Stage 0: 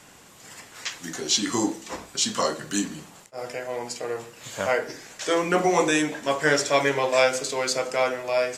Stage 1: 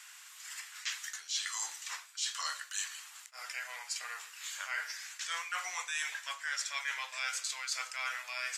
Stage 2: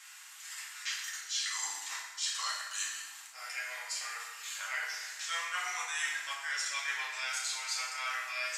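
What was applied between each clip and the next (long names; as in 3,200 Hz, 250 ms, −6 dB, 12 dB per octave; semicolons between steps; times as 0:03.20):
high-pass filter 1,300 Hz 24 dB per octave; reversed playback; downward compressor 6 to 1, threshold −34 dBFS, peak gain reduction 15.5 dB; reversed playback
convolution reverb RT60 1.2 s, pre-delay 4 ms, DRR −4 dB; level −3 dB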